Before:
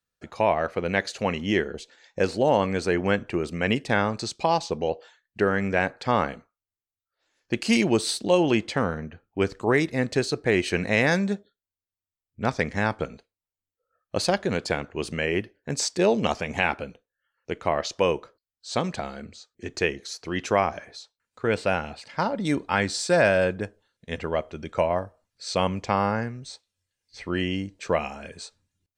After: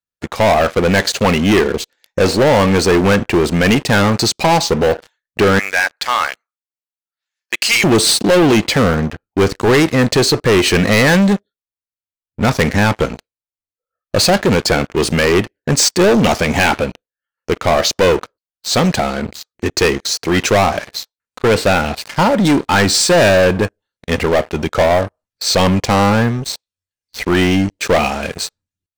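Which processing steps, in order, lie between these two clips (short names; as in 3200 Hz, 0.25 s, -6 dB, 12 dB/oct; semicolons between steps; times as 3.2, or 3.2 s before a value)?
5.59–7.84 HPF 1300 Hz 12 dB/oct; sample leveller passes 5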